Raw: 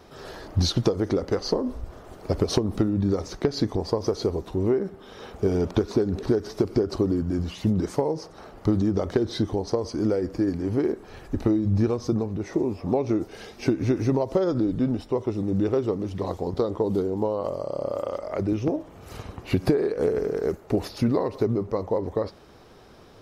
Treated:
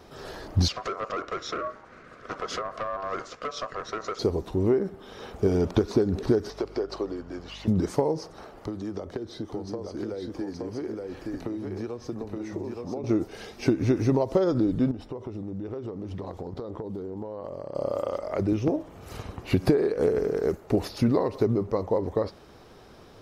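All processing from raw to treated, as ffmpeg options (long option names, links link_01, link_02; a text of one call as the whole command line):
ffmpeg -i in.wav -filter_complex "[0:a]asettb=1/sr,asplit=3[link_01][link_02][link_03];[link_01]atrim=end=0.684[link_04];[link_02]atrim=start=0.68:end=4.19,asetpts=PTS-STARTPTS,afade=type=in:duration=0.004:curve=qsin,afade=type=out:start_time=3.506:duration=0.004:curve=qsin,volume=24dB,asoftclip=hard,volume=-24dB,highpass=180,lowpass=5300,aeval=exprs='val(0)*sin(2*PI*870*n/s)':channel_layout=same[link_05];[link_03]atrim=start=4.186[link_06];[link_04][link_05]acrossfade=duration=0.004:curve1=hsin:curve2=qsin[link_07];[link_07][link_06]acrossfade=duration=0.004:curve1=qsin:curve2=hsin,asettb=1/sr,asplit=3[link_08][link_09][link_10];[link_08]atrim=end=6.504[link_11];[link_09]atrim=start=6.5:end=7.68,asetpts=PTS-STARTPTS,afade=type=in:duration=0.004:curve=qsin,afade=type=out:start_time=1.176:duration=0.004:curve=qsin,acrossover=split=400 5900:gain=0.0794 1 0.224[link_12][link_13][link_14];[link_12][link_13][link_14]amix=inputs=3:normalize=0,aeval=exprs='val(0)+0.00447*(sin(2*PI*50*n/s)+sin(2*PI*2*50*n/s)/2+sin(2*PI*3*50*n/s)/3+sin(2*PI*4*50*n/s)/4+sin(2*PI*5*50*n/s)/5)':channel_layout=same[link_15];[link_10]atrim=start=7.676[link_16];[link_11][link_15]acrossfade=duration=0.004:curve1=hsin:curve2=qsin[link_17];[link_17][link_16]acrossfade=duration=0.004:curve1=qsin:curve2=hsin,asettb=1/sr,asplit=3[link_18][link_19][link_20];[link_18]atrim=end=8.454[link_21];[link_19]atrim=start=8.45:end=13.04,asetpts=PTS-STARTPTS,afade=type=in:duration=0.004:curve=qsin,afade=type=out:start_time=4.586:duration=0.004:curve=qsin,bass=frequency=250:gain=-6,treble=frequency=4000:gain=-1,aecho=1:1:871:0.562,atrim=end_sample=202419,acrossover=split=260|640[link_22][link_23][link_24];[link_22]acompressor=threshold=-39dB:ratio=4[link_25];[link_23]acompressor=threshold=-36dB:ratio=4[link_26];[link_24]acompressor=threshold=-46dB:ratio=4[link_27];[link_25][link_26][link_27]amix=inputs=3:normalize=0[link_28];[link_20]atrim=start=13.036[link_29];[link_21][link_28]acrossfade=duration=0.004:curve1=hsin:curve2=qsin[link_30];[link_30][link_29]acrossfade=duration=0.004:curve1=qsin:curve2=hsin,asettb=1/sr,asplit=3[link_31][link_32][link_33];[link_31]atrim=end=14.914[link_34];[link_32]atrim=start=14.91:end=17.75,asetpts=PTS-STARTPTS,afade=type=in:duration=0.004:curve=qsin,afade=type=out:start_time=2.836:duration=0.004:curve=qsin,highshelf=frequency=4200:gain=-9,acompressor=threshold=-31dB:ratio=10:attack=3.2:release=140:knee=1:detection=peak[link_35];[link_33]atrim=start=17.746[link_36];[link_34][link_35]acrossfade=duration=0.004:curve1=hsin:curve2=qsin[link_37];[link_37][link_36]acrossfade=duration=0.004:curve1=qsin:curve2=hsin" out.wav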